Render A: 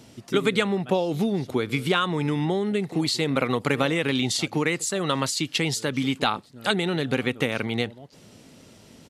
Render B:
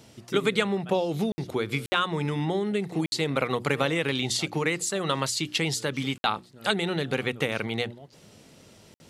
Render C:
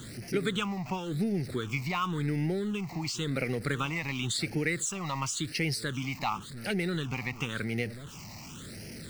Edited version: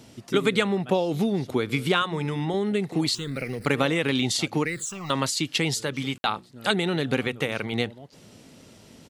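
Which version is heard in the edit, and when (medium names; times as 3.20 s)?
A
2.02–2.54 s: from B
3.15–3.66 s: from C
4.65–5.10 s: from C
5.80–6.50 s: from B
7.27–7.73 s: from B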